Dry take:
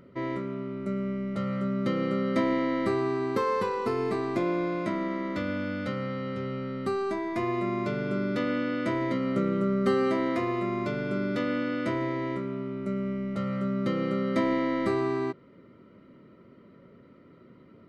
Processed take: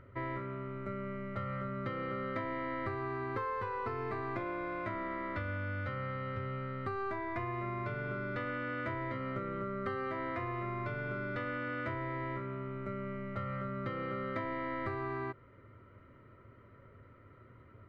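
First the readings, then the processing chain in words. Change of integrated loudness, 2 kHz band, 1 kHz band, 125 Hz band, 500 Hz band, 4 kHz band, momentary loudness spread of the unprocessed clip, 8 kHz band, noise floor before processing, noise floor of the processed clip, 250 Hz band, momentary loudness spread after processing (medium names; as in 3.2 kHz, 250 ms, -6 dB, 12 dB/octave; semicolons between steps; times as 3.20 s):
-9.0 dB, -3.5 dB, -4.5 dB, -5.0 dB, -10.5 dB, -12.5 dB, 7 LU, no reading, -55 dBFS, -59 dBFS, -13.5 dB, 3 LU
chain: FFT filter 110 Hz 0 dB, 170 Hz -21 dB, 1.6 kHz -5 dB, 7.6 kHz -28 dB; compression, threshold -42 dBFS, peak gain reduction 8.5 dB; trim +8 dB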